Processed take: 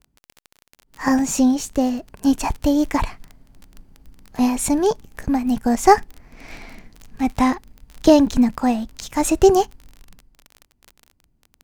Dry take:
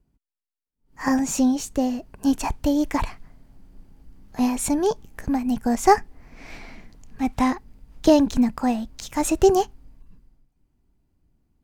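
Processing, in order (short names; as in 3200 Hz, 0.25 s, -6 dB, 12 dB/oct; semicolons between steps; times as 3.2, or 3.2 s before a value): in parallel at -6 dB: crossover distortion -42 dBFS; on the sum: crackle 28/s -28 dBFS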